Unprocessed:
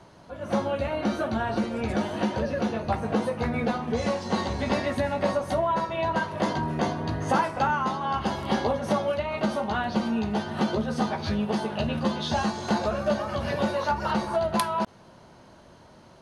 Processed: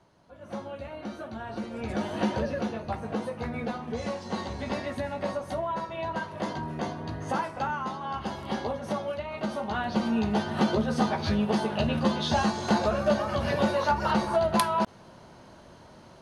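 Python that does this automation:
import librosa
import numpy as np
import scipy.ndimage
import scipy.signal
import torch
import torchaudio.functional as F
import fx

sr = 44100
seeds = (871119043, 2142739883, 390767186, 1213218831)

y = fx.gain(x, sr, db=fx.line((1.36, -11.0), (2.29, 0.0), (2.85, -6.0), (9.37, -6.0), (10.23, 1.0)))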